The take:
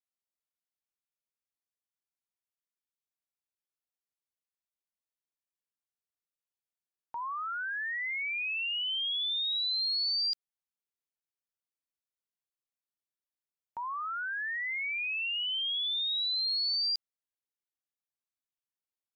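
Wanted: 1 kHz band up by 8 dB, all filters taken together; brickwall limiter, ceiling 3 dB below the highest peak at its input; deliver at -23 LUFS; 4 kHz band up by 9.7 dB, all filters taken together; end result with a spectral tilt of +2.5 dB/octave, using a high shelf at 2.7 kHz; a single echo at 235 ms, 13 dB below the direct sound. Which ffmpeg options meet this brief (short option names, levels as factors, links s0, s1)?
-af "equalizer=f=1000:t=o:g=8,highshelf=f=2700:g=7.5,equalizer=f=4000:t=o:g=5,alimiter=limit=0.1:level=0:latency=1,aecho=1:1:235:0.224,volume=0.944"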